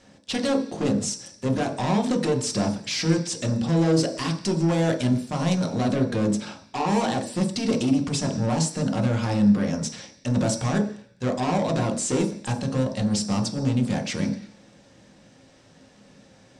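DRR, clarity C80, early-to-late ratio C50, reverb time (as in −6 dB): 2.0 dB, 13.5 dB, 10.5 dB, 0.50 s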